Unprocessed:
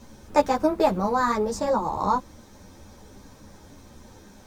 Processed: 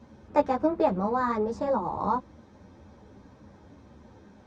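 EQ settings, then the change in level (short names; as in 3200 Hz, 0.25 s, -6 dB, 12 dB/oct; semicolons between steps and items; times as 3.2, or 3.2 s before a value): HPF 65 Hz; tape spacing loss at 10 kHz 26 dB; -1.5 dB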